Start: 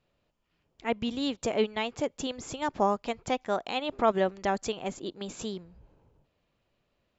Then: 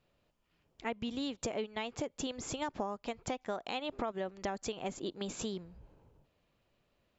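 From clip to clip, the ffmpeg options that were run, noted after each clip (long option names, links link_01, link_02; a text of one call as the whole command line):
ffmpeg -i in.wav -af "acompressor=threshold=-33dB:ratio=12" out.wav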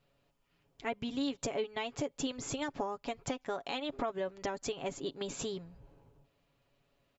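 ffmpeg -i in.wav -af "aecho=1:1:7.2:0.56" out.wav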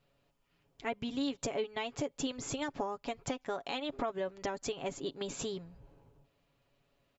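ffmpeg -i in.wav -af anull out.wav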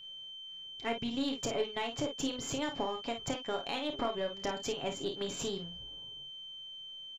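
ffmpeg -i in.wav -af "aeval=exprs='val(0)+0.00398*sin(2*PI*3100*n/s)':channel_layout=same,aecho=1:1:30|52:0.376|0.398,aeval=exprs='0.1*(cos(1*acos(clip(val(0)/0.1,-1,1)))-cos(1*PI/2))+0.00282*(cos(8*acos(clip(val(0)/0.1,-1,1)))-cos(8*PI/2))':channel_layout=same" out.wav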